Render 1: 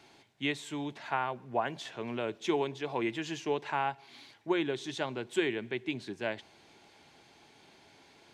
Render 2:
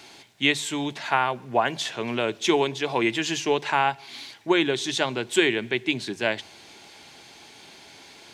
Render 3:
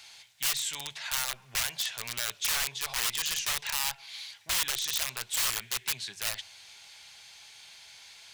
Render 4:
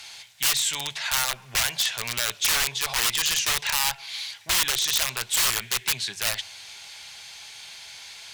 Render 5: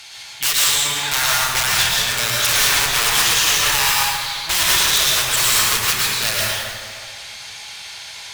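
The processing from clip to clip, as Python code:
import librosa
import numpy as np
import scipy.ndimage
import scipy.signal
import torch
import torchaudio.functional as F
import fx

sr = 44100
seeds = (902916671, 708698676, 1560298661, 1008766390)

y1 = fx.high_shelf(x, sr, hz=2300.0, db=8.5)
y1 = fx.hum_notches(y1, sr, base_hz=50, count=3)
y1 = F.gain(torch.from_numpy(y1), 8.0).numpy()
y2 = (np.mod(10.0 ** (20.0 / 20.0) * y1 + 1.0, 2.0) - 1.0) / 10.0 ** (20.0 / 20.0)
y2 = fx.tone_stack(y2, sr, knobs='10-0-10')
y3 = fx.cheby_harmonics(y2, sr, harmonics=(5,), levels_db=(-21,), full_scale_db=-15.5)
y3 = F.gain(torch.from_numpy(y3), 5.5).numpy()
y4 = fx.rev_plate(y3, sr, seeds[0], rt60_s=2.1, hf_ratio=0.55, predelay_ms=95, drr_db=-5.5)
y4 = F.gain(torch.from_numpy(y4), 3.0).numpy()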